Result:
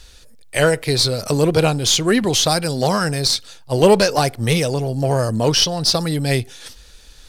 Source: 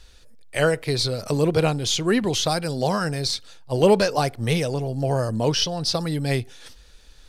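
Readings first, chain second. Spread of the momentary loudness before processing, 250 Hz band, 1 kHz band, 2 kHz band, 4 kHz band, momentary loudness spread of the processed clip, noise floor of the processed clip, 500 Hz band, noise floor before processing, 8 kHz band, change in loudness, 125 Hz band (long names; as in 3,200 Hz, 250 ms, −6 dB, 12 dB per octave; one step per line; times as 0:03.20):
7 LU, +4.5 dB, +5.0 dB, +5.5 dB, +7.0 dB, 6 LU, −45 dBFS, +4.5 dB, −50 dBFS, +8.5 dB, +5.5 dB, +4.5 dB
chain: high-shelf EQ 4,400 Hz +6 dB
in parallel at −4.5 dB: asymmetric clip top −25 dBFS
on the sum: level +1 dB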